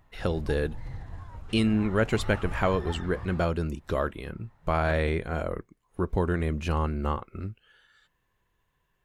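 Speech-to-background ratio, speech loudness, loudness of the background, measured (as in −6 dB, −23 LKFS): 11.5 dB, −29.0 LKFS, −40.5 LKFS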